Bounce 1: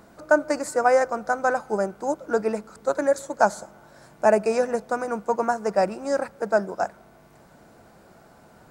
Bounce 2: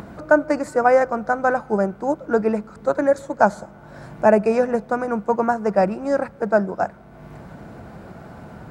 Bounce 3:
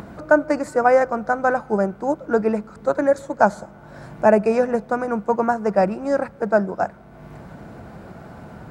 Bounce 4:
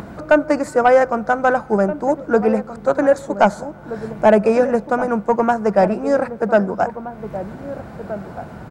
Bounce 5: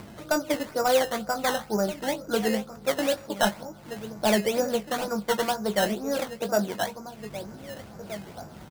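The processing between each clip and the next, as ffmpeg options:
ffmpeg -i in.wav -af "highpass=42,bass=frequency=250:gain=8,treble=frequency=4000:gain=-11,acompressor=mode=upward:threshold=-33dB:ratio=2.5,volume=3dB" out.wav
ffmpeg -i in.wav -af anull out.wav
ffmpeg -i in.wav -filter_complex "[0:a]asoftclip=type=tanh:threshold=-6.5dB,asplit=2[link_01][link_02];[link_02]adelay=1574,volume=-12dB,highshelf=frequency=4000:gain=-35.4[link_03];[link_01][link_03]amix=inputs=2:normalize=0,volume=4dB" out.wav
ffmpeg -i in.wav -filter_complex "[0:a]flanger=delay=8.7:depth=6.3:regen=-55:speed=0.27:shape=sinusoidal,acrusher=samples=13:mix=1:aa=0.000001:lfo=1:lforange=13:lforate=2.1,asplit=2[link_01][link_02];[link_02]adelay=19,volume=-10.5dB[link_03];[link_01][link_03]amix=inputs=2:normalize=0,volume=-6dB" out.wav

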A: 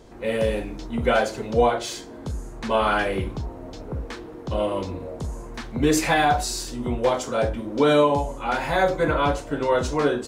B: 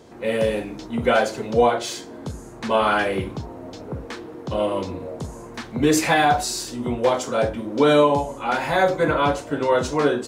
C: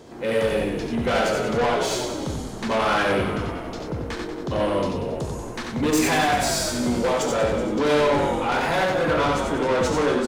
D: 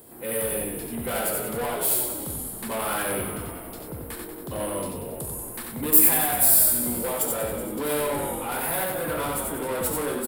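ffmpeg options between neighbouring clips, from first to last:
ffmpeg -i in.wav -af "highpass=100,volume=2dB" out.wav
ffmpeg -i in.wav -filter_complex "[0:a]asplit=2[link_01][link_02];[link_02]asplit=6[link_03][link_04][link_05][link_06][link_07][link_08];[link_03]adelay=187,afreqshift=-56,volume=-11dB[link_09];[link_04]adelay=374,afreqshift=-112,volume=-15.9dB[link_10];[link_05]adelay=561,afreqshift=-168,volume=-20.8dB[link_11];[link_06]adelay=748,afreqshift=-224,volume=-25.6dB[link_12];[link_07]adelay=935,afreqshift=-280,volume=-30.5dB[link_13];[link_08]adelay=1122,afreqshift=-336,volume=-35.4dB[link_14];[link_09][link_10][link_11][link_12][link_13][link_14]amix=inputs=6:normalize=0[link_15];[link_01][link_15]amix=inputs=2:normalize=0,asoftclip=type=tanh:threshold=-21dB,asplit=2[link_16][link_17];[link_17]aecho=0:1:70|90:0.376|0.596[link_18];[link_16][link_18]amix=inputs=2:normalize=0,volume=2dB" out.wav
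ffmpeg -i in.wav -af "aexciter=amount=14.9:drive=10:freq=9500,volume=-7.5dB" out.wav

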